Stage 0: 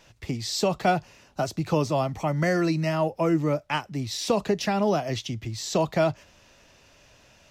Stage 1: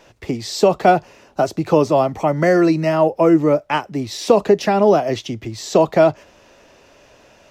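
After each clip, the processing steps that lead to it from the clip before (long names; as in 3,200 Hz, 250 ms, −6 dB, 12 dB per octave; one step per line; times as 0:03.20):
drawn EQ curve 130 Hz 0 dB, 400 Hz +11 dB, 4,000 Hz +1 dB
level +1.5 dB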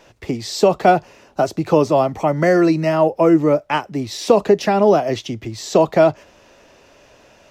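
no processing that can be heard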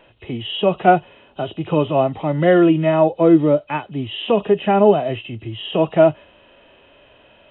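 hearing-aid frequency compression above 2,500 Hz 4 to 1
harmonic and percussive parts rebalanced percussive −10 dB
level +1.5 dB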